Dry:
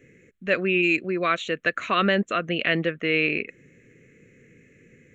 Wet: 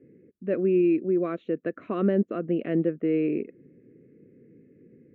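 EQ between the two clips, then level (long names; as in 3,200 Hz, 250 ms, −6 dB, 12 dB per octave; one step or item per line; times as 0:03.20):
resonant band-pass 330 Hz, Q 1.5
high-frequency loss of the air 150 metres
low-shelf EQ 350 Hz +8.5 dB
0.0 dB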